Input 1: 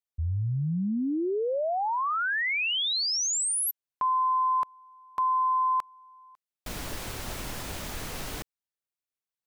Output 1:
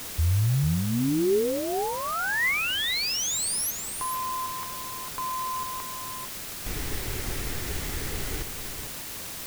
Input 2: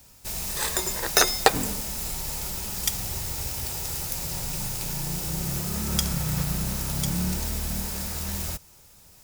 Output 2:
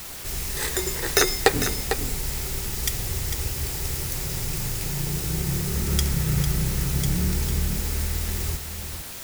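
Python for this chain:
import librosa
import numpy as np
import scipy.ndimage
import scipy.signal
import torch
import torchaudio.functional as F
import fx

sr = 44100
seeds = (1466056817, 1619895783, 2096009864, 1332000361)

p1 = fx.graphic_eq_31(x, sr, hz=(200, 400, 630, 1000, 2000), db=(-8, 6, -7, -6, 6))
p2 = p1 + fx.echo_single(p1, sr, ms=450, db=-8.0, dry=0)
p3 = fx.quant_dither(p2, sr, seeds[0], bits=6, dither='triangular')
p4 = fx.low_shelf(p3, sr, hz=320.0, db=8.0)
y = p4 * librosa.db_to_amplitude(-1.5)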